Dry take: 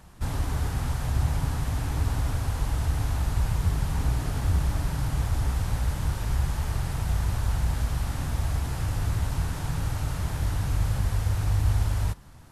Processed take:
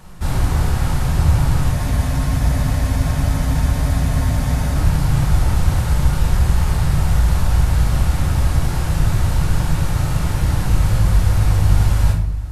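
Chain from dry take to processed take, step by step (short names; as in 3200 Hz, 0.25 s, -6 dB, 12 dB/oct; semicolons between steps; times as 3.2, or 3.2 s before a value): shoebox room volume 150 m³, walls mixed, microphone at 0.97 m; spectral freeze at 1.74, 3.02 s; gain +6.5 dB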